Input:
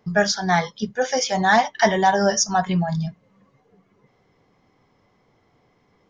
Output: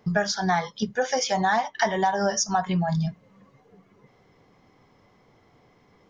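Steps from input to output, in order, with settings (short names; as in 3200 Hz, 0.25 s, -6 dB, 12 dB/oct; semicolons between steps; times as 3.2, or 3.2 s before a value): dynamic EQ 1000 Hz, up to +5 dB, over -28 dBFS, Q 1.2; compressor 4:1, threshold -25 dBFS, peak gain reduction 14 dB; gain +3 dB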